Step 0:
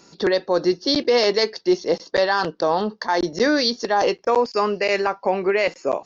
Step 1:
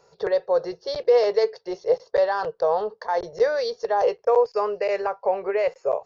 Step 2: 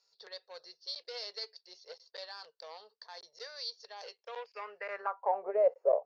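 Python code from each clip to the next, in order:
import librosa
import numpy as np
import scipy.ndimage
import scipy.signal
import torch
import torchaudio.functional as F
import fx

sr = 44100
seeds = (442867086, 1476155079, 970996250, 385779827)

y1 = fx.curve_eq(x, sr, hz=(130.0, 290.0, 440.0, 3200.0), db=(0, -26, 7, -9))
y1 = y1 * 10.0 ** (-5.0 / 20.0)
y2 = fx.cheby_harmonics(y1, sr, harmonics=(3, 4, 7, 8), levels_db=(-22, -44, -42, -38), full_scale_db=-9.0)
y2 = fx.filter_sweep_bandpass(y2, sr, from_hz=4500.0, to_hz=590.0, start_s=4.11, end_s=5.6, q=3.0)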